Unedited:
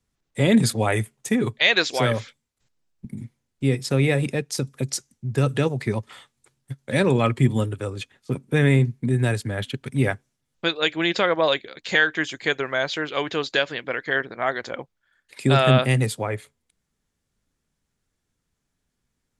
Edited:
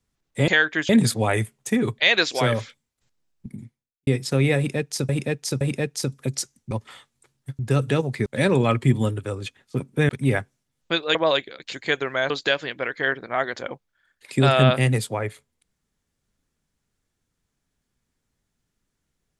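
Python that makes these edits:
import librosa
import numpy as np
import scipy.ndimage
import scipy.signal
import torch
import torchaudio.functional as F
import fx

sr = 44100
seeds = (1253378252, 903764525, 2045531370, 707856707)

y = fx.edit(x, sr, fx.fade_out_span(start_s=3.06, length_s=0.6, curve='qua'),
    fx.repeat(start_s=4.16, length_s=0.52, count=3),
    fx.move(start_s=5.26, length_s=0.67, to_s=6.81),
    fx.cut(start_s=8.64, length_s=1.18),
    fx.cut(start_s=10.88, length_s=0.44),
    fx.move(start_s=11.9, length_s=0.41, to_s=0.48),
    fx.cut(start_s=12.88, length_s=0.5), tone=tone)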